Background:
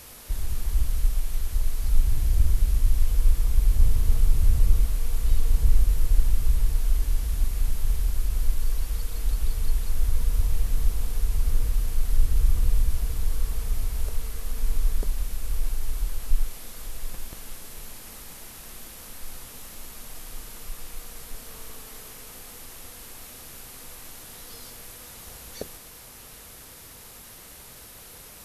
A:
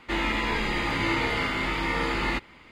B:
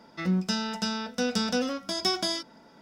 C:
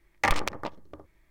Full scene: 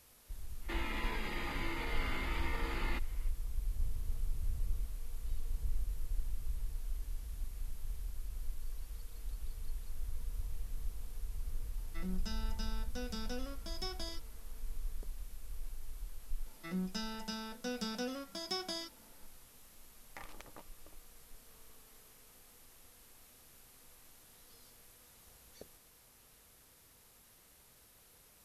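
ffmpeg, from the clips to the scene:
-filter_complex "[2:a]asplit=2[s0][s1];[0:a]volume=0.133[s2];[1:a]alimiter=limit=0.0891:level=0:latency=1:release=76[s3];[3:a]acompressor=threshold=0.0355:ratio=6:attack=3.2:release=140:knee=1:detection=peak[s4];[s3]atrim=end=2.71,asetpts=PTS-STARTPTS,volume=0.299,afade=t=in:d=0.05,afade=t=out:st=2.66:d=0.05,adelay=600[s5];[s0]atrim=end=2.81,asetpts=PTS-STARTPTS,volume=0.158,afade=t=in:d=0.004:c=hsin,afade=t=out:st=2.806:d=0.004:c=hsin,adelay=11770[s6];[s1]atrim=end=2.81,asetpts=PTS-STARTPTS,volume=0.251,afade=t=in:d=0.004:c=hsin,afade=t=out:st=2.806:d=0.004:c=hsin,adelay=16460[s7];[s4]atrim=end=1.3,asetpts=PTS-STARTPTS,volume=0.15,afade=t=in:d=0.004:c=hsin,afade=t=out:st=1.296:d=0.004:c=hsin,adelay=19930[s8];[s2][s5][s6][s7][s8]amix=inputs=5:normalize=0"

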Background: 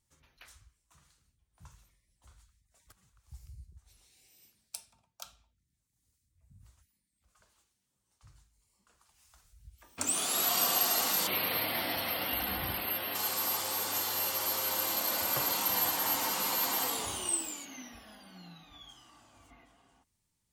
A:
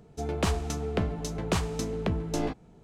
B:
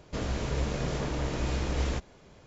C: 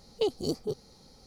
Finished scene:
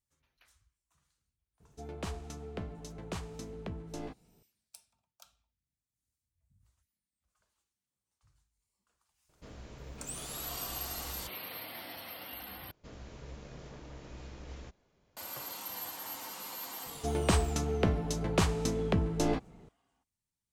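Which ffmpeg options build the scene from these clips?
-filter_complex "[1:a]asplit=2[s0][s1];[2:a]asplit=2[s2][s3];[0:a]volume=0.266[s4];[s3]aresample=16000,aresample=44100[s5];[s4]asplit=2[s6][s7];[s6]atrim=end=12.714[s8];[s5]atrim=end=2.46,asetpts=PTS-STARTPTS,volume=0.141[s9];[s7]atrim=start=15.166[s10];[s0]atrim=end=2.83,asetpts=PTS-STARTPTS,volume=0.251,afade=t=in:d=0.004:c=hsin,afade=t=out:st=2.826:d=0.004:c=hsin,adelay=1600[s11];[s2]atrim=end=2.46,asetpts=PTS-STARTPTS,volume=0.133,afade=t=in:d=0.004:c=hsin,afade=t=out:st=2.456:d=0.004:c=hsin,adelay=9290[s12];[s1]atrim=end=2.83,asetpts=PTS-STARTPTS,afade=t=in:d=0.004:c=hsin,afade=t=out:st=2.826:d=0.004:c=hsin,adelay=16860[s13];[s8][s9]acrossfade=d=0.004:c1=hsin:c2=hsin[s14];[s14][s10]acrossfade=d=0.004:c1=hsin:c2=hsin[s15];[s15][s11][s12][s13]amix=inputs=4:normalize=0"

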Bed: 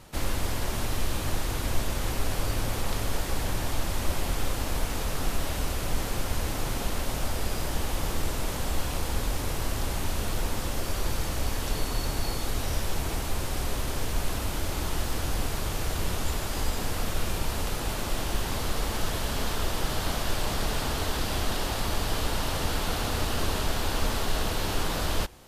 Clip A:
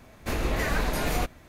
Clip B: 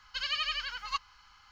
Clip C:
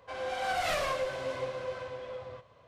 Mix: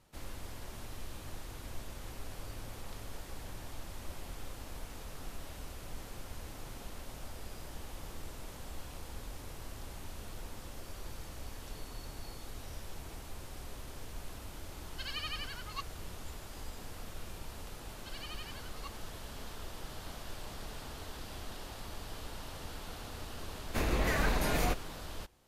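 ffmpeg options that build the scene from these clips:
-filter_complex "[2:a]asplit=2[s0][s1];[0:a]volume=0.158[s2];[s0]atrim=end=1.51,asetpts=PTS-STARTPTS,volume=0.398,afade=t=in:d=0.004:c=hsin,afade=t=out:st=1.506:d=0.004:c=hsin,adelay=14840[s3];[s1]atrim=end=1.51,asetpts=PTS-STARTPTS,volume=0.168,afade=t=in:d=0.004:c=hsin,afade=t=out:st=1.506:d=0.004:c=hsin,adelay=17910[s4];[1:a]atrim=end=1.48,asetpts=PTS-STARTPTS,volume=0.668,afade=t=in:d=0.004:c=hsin,afade=t=out:st=1.476:d=0.004:c=hsin,adelay=23480[s5];[s2][s3][s4][s5]amix=inputs=4:normalize=0"

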